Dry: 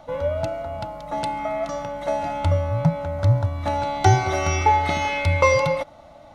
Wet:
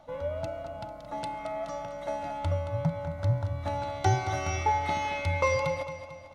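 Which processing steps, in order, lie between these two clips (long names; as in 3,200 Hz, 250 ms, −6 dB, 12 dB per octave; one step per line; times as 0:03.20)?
repeating echo 223 ms, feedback 48%, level −11 dB
level −9 dB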